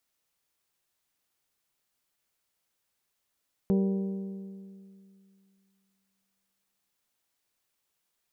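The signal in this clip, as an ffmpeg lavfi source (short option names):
-f lavfi -i "aevalsrc='0.0891*pow(10,-3*t/2.5)*sin(2*PI*194*t)+0.0422*pow(10,-3*t/2.031)*sin(2*PI*388*t)+0.02*pow(10,-3*t/1.923)*sin(2*PI*465.6*t)+0.00944*pow(10,-3*t/1.798)*sin(2*PI*582*t)+0.00447*pow(10,-3*t/1.649)*sin(2*PI*776*t)+0.00211*pow(10,-3*t/1.543)*sin(2*PI*970*t)':d=3.25:s=44100"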